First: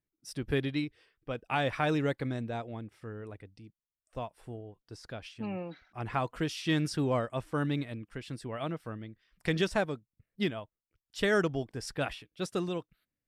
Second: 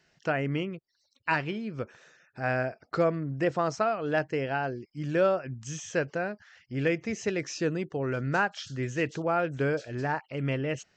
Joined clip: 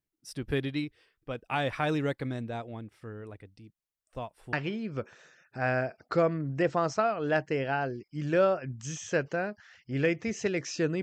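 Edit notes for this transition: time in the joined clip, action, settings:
first
4.53 switch to second from 1.35 s

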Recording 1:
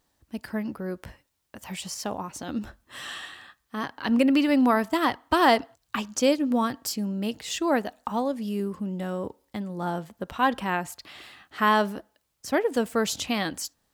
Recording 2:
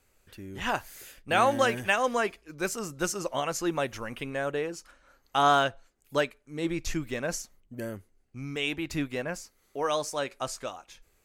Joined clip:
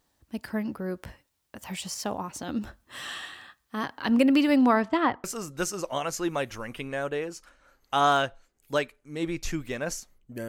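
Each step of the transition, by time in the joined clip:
recording 1
4.56–5.24 LPF 11000 Hz -> 1300 Hz
5.24 switch to recording 2 from 2.66 s

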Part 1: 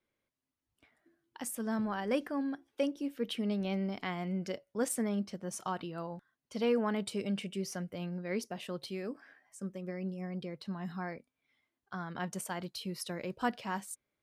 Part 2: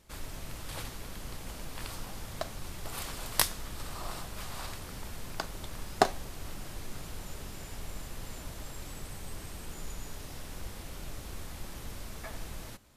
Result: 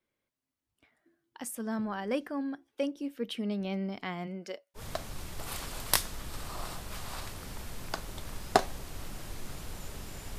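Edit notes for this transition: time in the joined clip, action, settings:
part 1
4.26–4.82 HPF 200 Hz -> 850 Hz
4.78 switch to part 2 from 2.24 s, crossfade 0.08 s

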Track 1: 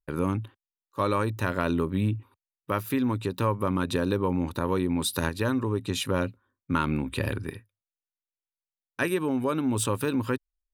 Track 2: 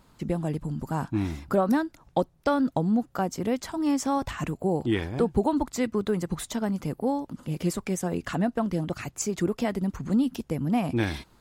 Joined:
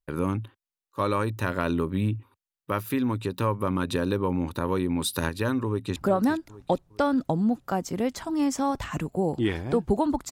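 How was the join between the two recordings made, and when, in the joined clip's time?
track 1
5.67–5.96 echo throw 0.41 s, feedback 45%, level -12 dB
5.96 switch to track 2 from 1.43 s

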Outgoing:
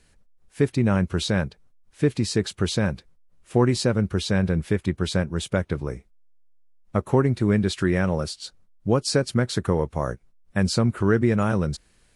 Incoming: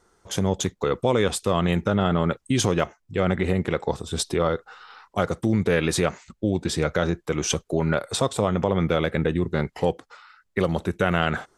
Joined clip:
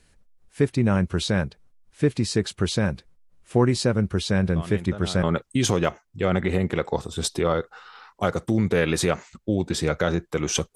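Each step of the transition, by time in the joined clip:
outgoing
4.56 add incoming from 1.51 s 0.67 s -14 dB
5.23 switch to incoming from 2.18 s

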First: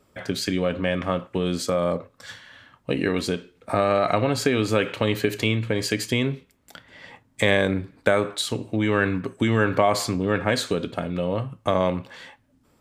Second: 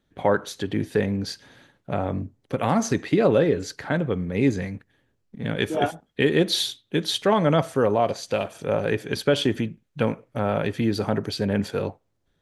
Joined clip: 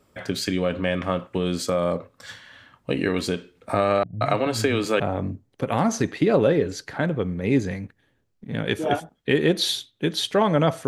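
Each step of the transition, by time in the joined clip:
first
4.03–5 bands offset in time lows, highs 0.18 s, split 190 Hz
5 switch to second from 1.91 s

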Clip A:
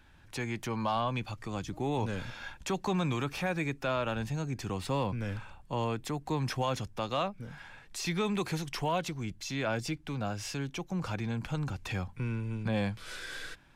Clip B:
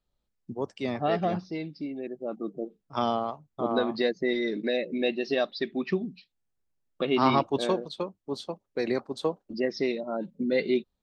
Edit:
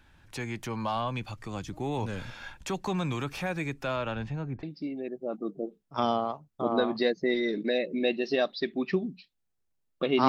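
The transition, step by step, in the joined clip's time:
clip A
3.96–4.63 LPF 7800 Hz -> 1100 Hz
4.63 switch to clip B from 1.62 s

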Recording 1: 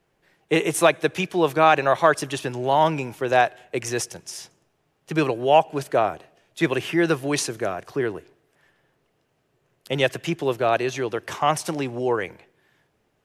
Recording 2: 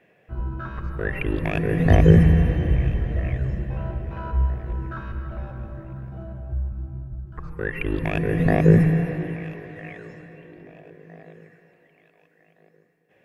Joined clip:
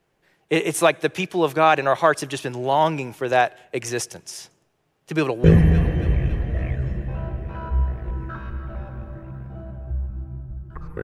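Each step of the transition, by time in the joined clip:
recording 1
5.13–5.44 echo throw 0.28 s, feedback 60%, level -9.5 dB
5.44 switch to recording 2 from 2.06 s

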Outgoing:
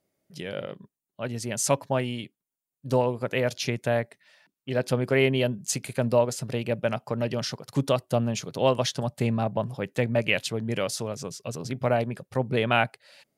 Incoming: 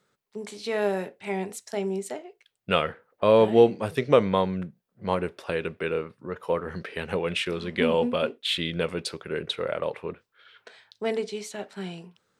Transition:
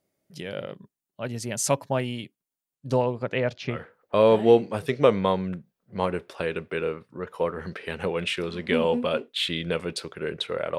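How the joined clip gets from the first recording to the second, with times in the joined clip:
outgoing
2.75–3.86 LPF 11000 Hz -> 1700 Hz
3.77 switch to incoming from 2.86 s, crossfade 0.18 s

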